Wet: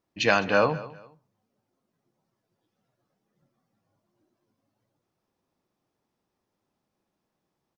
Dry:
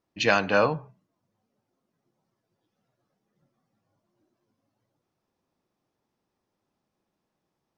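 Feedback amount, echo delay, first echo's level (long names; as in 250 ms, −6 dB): 28%, 205 ms, −18.0 dB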